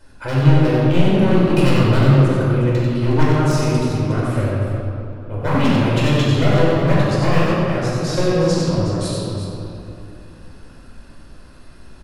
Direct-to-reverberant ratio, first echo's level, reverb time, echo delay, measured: -8.0 dB, -4.0 dB, 2.9 s, 93 ms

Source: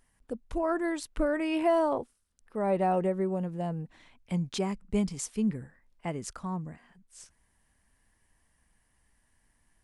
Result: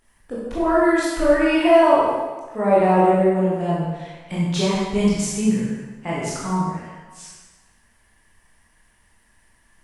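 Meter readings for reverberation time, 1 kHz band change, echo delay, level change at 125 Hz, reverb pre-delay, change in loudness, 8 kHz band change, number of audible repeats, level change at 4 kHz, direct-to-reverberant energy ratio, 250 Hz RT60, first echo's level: 1.4 s, +12.5 dB, none, +10.5 dB, 17 ms, +11.5 dB, +10.5 dB, none, +13.0 dB, -8.0 dB, 1.2 s, none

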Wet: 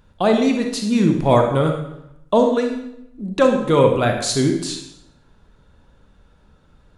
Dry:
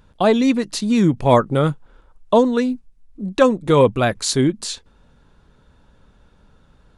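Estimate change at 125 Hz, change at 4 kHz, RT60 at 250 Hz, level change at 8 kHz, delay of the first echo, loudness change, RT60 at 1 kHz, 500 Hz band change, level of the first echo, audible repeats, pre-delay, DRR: 0.0 dB, -0.5 dB, 0.90 s, -0.5 dB, none, -0.5 dB, 0.75 s, 0.0 dB, none, none, 33 ms, 3.0 dB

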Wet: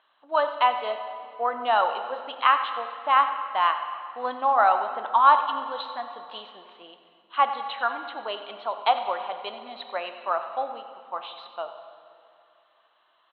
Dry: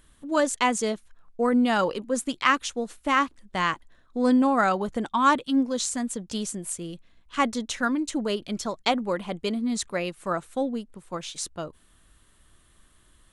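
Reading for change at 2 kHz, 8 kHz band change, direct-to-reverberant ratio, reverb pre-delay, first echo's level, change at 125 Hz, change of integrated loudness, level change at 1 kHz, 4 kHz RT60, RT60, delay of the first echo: -2.0 dB, under -40 dB, 7.0 dB, 3 ms, -15.0 dB, under -25 dB, +1.0 dB, +5.5 dB, 2.0 s, 2.6 s, 93 ms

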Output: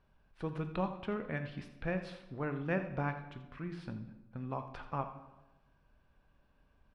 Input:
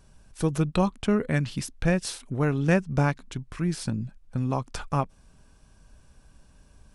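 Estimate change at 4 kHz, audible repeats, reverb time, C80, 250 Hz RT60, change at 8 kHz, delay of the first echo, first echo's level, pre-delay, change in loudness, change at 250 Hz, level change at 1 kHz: -16.5 dB, 1, 1.1 s, 10.5 dB, 1.1 s, under -30 dB, 84 ms, -13.5 dB, 16 ms, -12.0 dB, -13.0 dB, -8.5 dB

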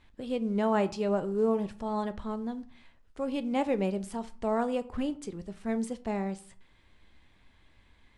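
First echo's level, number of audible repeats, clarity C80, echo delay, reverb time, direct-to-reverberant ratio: none, none, 22.0 dB, none, 0.45 s, 11.5 dB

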